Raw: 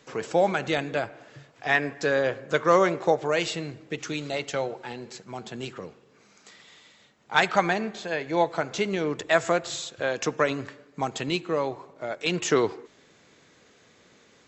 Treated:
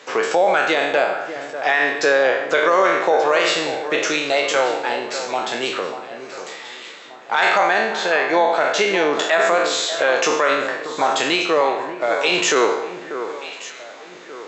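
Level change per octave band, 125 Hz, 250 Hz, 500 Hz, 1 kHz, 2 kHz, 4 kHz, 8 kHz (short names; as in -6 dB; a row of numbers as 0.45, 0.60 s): -7.0 dB, +3.5 dB, +8.0 dB, +9.5 dB, +10.0 dB, +11.0 dB, n/a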